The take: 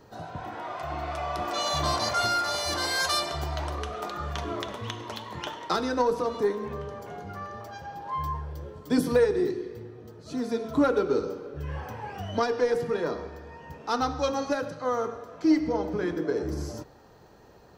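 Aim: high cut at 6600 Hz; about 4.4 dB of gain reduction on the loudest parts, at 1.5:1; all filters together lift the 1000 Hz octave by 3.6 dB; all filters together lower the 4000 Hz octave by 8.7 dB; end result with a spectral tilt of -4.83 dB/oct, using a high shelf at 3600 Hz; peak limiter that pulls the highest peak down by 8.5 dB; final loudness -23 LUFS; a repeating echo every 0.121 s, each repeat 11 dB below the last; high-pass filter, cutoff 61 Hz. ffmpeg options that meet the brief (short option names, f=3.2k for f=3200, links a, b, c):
-af "highpass=61,lowpass=6.6k,equalizer=f=1k:t=o:g=5.5,highshelf=f=3.6k:g=-4,equalizer=f=4k:t=o:g=-7.5,acompressor=threshold=-29dB:ratio=1.5,alimiter=limit=-22.5dB:level=0:latency=1,aecho=1:1:121|242|363:0.282|0.0789|0.0221,volume=9.5dB"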